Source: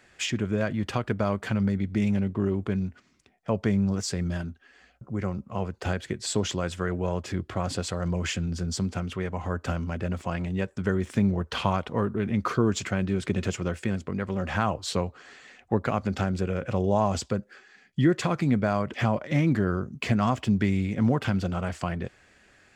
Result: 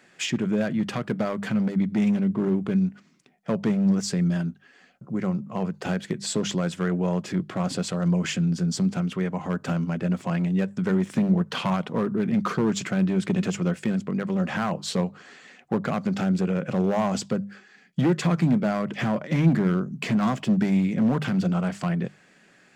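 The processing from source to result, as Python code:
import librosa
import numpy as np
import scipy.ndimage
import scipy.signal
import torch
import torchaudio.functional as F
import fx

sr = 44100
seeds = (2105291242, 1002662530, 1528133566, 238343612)

y = np.clip(x, -10.0 ** (-20.0 / 20.0), 10.0 ** (-20.0 / 20.0))
y = fx.low_shelf_res(y, sr, hz=110.0, db=-13.5, q=3.0)
y = fx.hum_notches(y, sr, base_hz=50, count=4)
y = y * 10.0 ** (1.0 / 20.0)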